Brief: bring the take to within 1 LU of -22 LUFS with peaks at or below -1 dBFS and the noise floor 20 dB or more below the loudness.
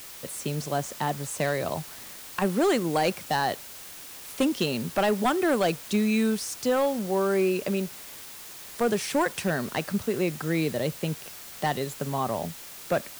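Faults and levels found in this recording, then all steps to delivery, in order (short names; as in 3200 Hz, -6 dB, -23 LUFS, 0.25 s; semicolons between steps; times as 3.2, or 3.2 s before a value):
clipped 0.6%; flat tops at -17.0 dBFS; noise floor -43 dBFS; noise floor target -48 dBFS; loudness -27.5 LUFS; peak -17.0 dBFS; loudness target -22.0 LUFS
-> clip repair -17 dBFS; denoiser 6 dB, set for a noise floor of -43 dBFS; gain +5.5 dB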